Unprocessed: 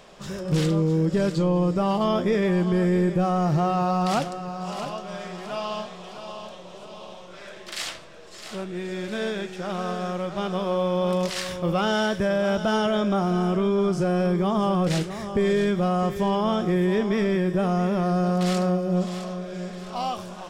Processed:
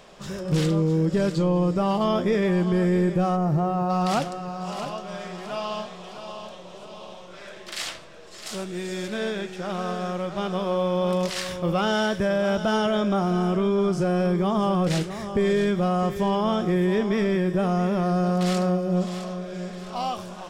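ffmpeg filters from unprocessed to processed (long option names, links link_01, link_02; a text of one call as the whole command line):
ffmpeg -i in.wav -filter_complex "[0:a]asplit=3[link_01][link_02][link_03];[link_01]afade=type=out:start_time=3.35:duration=0.02[link_04];[link_02]equalizer=frequency=4300:width_type=o:width=2.9:gain=-11.5,afade=type=in:start_time=3.35:duration=0.02,afade=type=out:start_time=3.89:duration=0.02[link_05];[link_03]afade=type=in:start_time=3.89:duration=0.02[link_06];[link_04][link_05][link_06]amix=inputs=3:normalize=0,asettb=1/sr,asplit=3[link_07][link_08][link_09];[link_07]atrim=end=8.464[link_10];[link_08]atrim=start=8.46:end=9.08,asetpts=PTS-STARTPTS,afade=type=in:duration=0.004:curve=qsin,afade=type=out:start_time=0.616:duration=0.004:curve=qsin,bass=frequency=250:gain=0,treble=frequency=4000:gain=10[link_11];[link_09]atrim=start=9.076[link_12];[link_10][link_11]acrossfade=duration=0.004:curve1=hsin:curve2=qsin[link_13];[link_13][link_12]acrossfade=duration=0.004:curve1=qsin:curve2=hsin" out.wav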